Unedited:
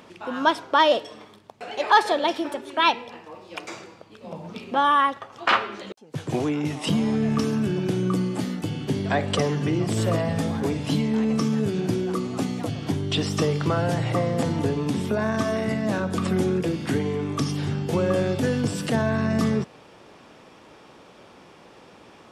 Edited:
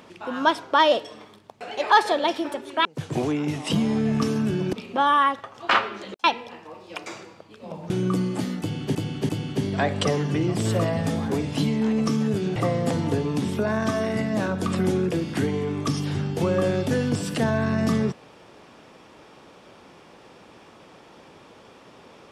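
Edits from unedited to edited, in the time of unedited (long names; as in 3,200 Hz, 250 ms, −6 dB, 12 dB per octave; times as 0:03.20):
0:02.85–0:04.51: swap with 0:06.02–0:07.90
0:08.61–0:08.95: repeat, 3 plays
0:11.88–0:14.08: remove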